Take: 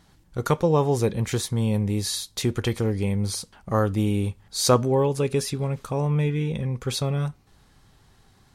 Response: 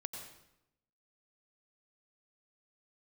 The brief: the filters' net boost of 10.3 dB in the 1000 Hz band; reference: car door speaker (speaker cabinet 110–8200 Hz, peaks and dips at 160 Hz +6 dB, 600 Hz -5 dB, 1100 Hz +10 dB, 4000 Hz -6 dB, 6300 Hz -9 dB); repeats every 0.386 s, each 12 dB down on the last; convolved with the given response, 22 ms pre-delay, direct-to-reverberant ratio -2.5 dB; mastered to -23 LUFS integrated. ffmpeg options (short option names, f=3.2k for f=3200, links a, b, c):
-filter_complex "[0:a]equalizer=f=1k:t=o:g=5.5,aecho=1:1:386|772|1158:0.251|0.0628|0.0157,asplit=2[a][b];[1:a]atrim=start_sample=2205,adelay=22[c];[b][c]afir=irnorm=-1:irlink=0,volume=4dB[d];[a][d]amix=inputs=2:normalize=0,highpass=110,equalizer=f=160:t=q:w=4:g=6,equalizer=f=600:t=q:w=4:g=-5,equalizer=f=1.1k:t=q:w=4:g=10,equalizer=f=4k:t=q:w=4:g=-6,equalizer=f=6.3k:t=q:w=4:g=-9,lowpass=f=8.2k:w=0.5412,lowpass=f=8.2k:w=1.3066,volume=-5dB"